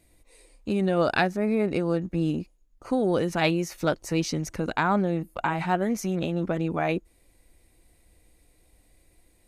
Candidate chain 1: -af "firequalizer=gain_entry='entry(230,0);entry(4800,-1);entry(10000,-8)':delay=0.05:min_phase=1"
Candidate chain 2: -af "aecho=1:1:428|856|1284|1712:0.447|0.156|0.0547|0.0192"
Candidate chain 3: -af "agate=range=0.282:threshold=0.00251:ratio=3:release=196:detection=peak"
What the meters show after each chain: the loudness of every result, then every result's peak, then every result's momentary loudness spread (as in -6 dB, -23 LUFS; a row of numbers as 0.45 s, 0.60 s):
-26.5 LUFS, -26.0 LUFS, -26.5 LUFS; -10.0 dBFS, -9.0 dBFS, -9.5 dBFS; 6 LU, 10 LU, 6 LU